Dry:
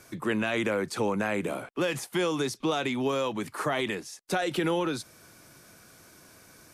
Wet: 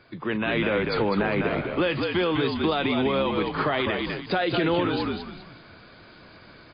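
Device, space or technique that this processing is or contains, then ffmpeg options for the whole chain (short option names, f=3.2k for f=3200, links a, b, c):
low-bitrate web radio: -filter_complex "[0:a]asplit=5[a][b][c][d][e];[b]adelay=201,afreqshift=-52,volume=-6dB[f];[c]adelay=402,afreqshift=-104,volume=-16.2dB[g];[d]adelay=603,afreqshift=-156,volume=-26.3dB[h];[e]adelay=804,afreqshift=-208,volume=-36.5dB[i];[a][f][g][h][i]amix=inputs=5:normalize=0,dynaudnorm=f=380:g=3:m=6.5dB,alimiter=limit=-14dB:level=0:latency=1:release=116" -ar 11025 -c:a libmp3lame -b:a 24k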